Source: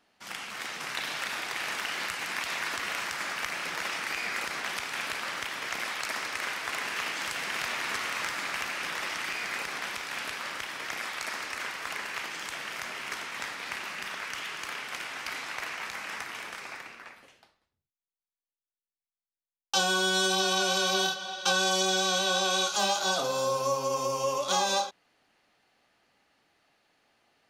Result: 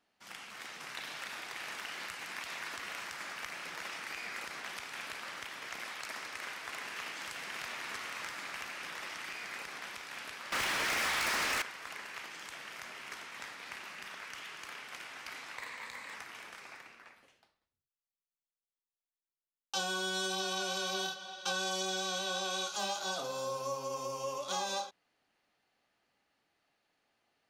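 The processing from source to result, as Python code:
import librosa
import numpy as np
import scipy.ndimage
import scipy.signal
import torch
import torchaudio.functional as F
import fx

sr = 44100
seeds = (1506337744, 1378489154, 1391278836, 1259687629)

y = fx.leveller(x, sr, passes=5, at=(10.52, 11.62))
y = fx.ripple_eq(y, sr, per_octave=1.0, db=8, at=(15.58, 16.14))
y = y * 10.0 ** (-9.0 / 20.0)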